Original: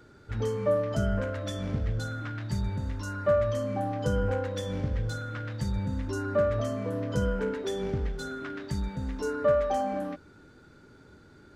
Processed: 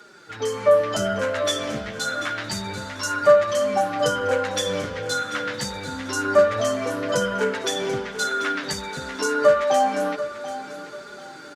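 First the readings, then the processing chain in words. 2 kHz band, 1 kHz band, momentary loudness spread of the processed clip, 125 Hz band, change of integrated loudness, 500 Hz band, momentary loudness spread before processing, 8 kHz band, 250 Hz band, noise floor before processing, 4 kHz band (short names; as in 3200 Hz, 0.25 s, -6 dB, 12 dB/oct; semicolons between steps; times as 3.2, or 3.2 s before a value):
+13.5 dB, +11.0 dB, 13 LU, -6.5 dB, +7.5 dB, +8.5 dB, 9 LU, +17.0 dB, +2.5 dB, -55 dBFS, +16.0 dB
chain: in parallel at +2 dB: compressor, threshold -38 dBFS, peak gain reduction 17.5 dB; on the sum: weighting filter A; flange 0.27 Hz, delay 4.7 ms, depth 9.8 ms, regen +4%; high shelf 4400 Hz +8.5 dB; feedback echo 0.739 s, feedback 29%, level -13 dB; AGC gain up to 6.5 dB; gain +4.5 dB; Opus 48 kbps 48000 Hz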